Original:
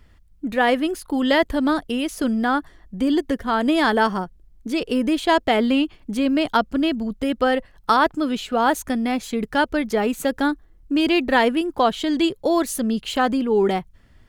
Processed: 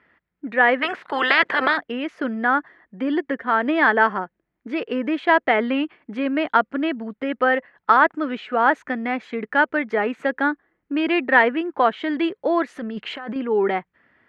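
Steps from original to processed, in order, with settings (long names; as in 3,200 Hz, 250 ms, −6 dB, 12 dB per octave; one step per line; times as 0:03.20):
0:00.81–0:01.76: ceiling on every frequency bin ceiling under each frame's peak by 29 dB
high-pass filter 270 Hz 12 dB per octave
0:12.76–0:13.36: compressor whose output falls as the input rises −29 dBFS, ratio −1
low-pass with resonance 1,900 Hz, resonance Q 2.3
level −1 dB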